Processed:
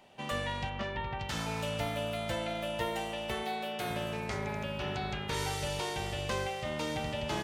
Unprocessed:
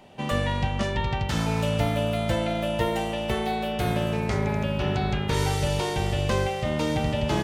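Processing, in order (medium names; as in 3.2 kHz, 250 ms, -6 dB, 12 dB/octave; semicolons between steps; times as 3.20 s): 0.69–1.18 s: low-pass 3.9 kHz -> 2.1 kHz 12 dB/octave; bass shelf 480 Hz -8.5 dB; 3.43–3.90 s: high-pass 150 Hz 12 dB/octave; trim -5 dB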